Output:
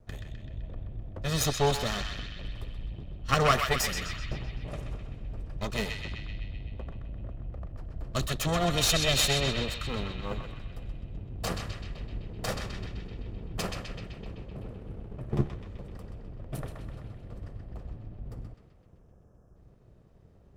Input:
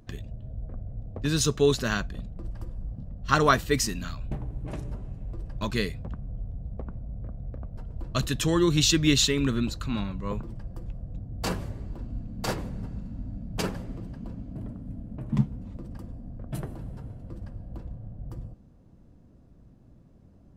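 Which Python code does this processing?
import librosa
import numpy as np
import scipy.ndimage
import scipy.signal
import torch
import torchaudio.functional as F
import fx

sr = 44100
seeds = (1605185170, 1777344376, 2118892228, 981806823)

y = fx.lower_of_two(x, sr, delay_ms=1.6)
y = fx.spec_erase(y, sr, start_s=18.74, length_s=0.82, low_hz=1800.0, high_hz=5000.0)
y = fx.echo_banded(y, sr, ms=128, feedback_pct=71, hz=2700.0, wet_db=-3)
y = y * librosa.db_to_amplitude(-1.5)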